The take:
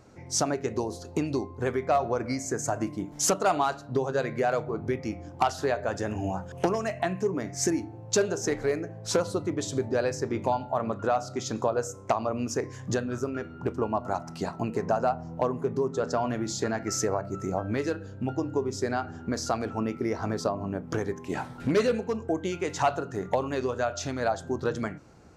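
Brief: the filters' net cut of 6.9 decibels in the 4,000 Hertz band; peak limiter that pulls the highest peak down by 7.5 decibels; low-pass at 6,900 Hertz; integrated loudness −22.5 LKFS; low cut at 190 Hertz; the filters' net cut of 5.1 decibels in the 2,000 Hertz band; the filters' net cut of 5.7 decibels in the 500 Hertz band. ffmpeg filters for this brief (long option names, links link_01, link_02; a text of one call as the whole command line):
ffmpeg -i in.wav -af "highpass=190,lowpass=6900,equalizer=frequency=500:width_type=o:gain=-7,equalizer=frequency=2000:width_type=o:gain=-5,equalizer=frequency=4000:width_type=o:gain=-7.5,volume=13dB,alimiter=limit=-10dB:level=0:latency=1" out.wav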